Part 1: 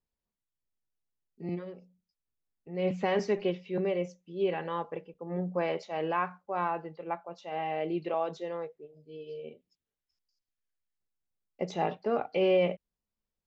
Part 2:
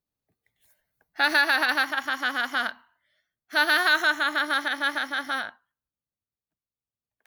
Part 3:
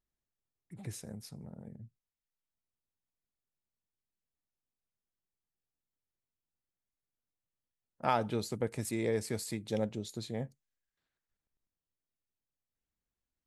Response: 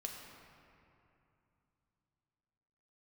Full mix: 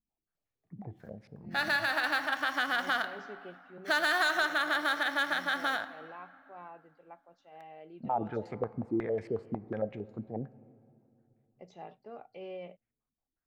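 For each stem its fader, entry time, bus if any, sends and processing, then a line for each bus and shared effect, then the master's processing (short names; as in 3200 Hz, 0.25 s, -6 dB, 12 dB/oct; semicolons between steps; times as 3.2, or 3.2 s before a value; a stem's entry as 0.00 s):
-18.5 dB, 0.00 s, bus A, no send, dry
-2.0 dB, 0.35 s, bus A, send -8.5 dB, median filter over 5 samples; auto duck -12 dB, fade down 0.60 s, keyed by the third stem
-4.5 dB, 0.00 s, no bus, send -11.5 dB, limiter -24 dBFS, peak gain reduction 10 dB; stepped low-pass 11 Hz 240–2100 Hz
bus A: 0.0 dB, overloaded stage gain 18.5 dB; compressor, threshold -29 dBFS, peak gain reduction 8 dB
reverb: on, RT60 2.8 s, pre-delay 6 ms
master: bell 720 Hz +4 dB 0.33 oct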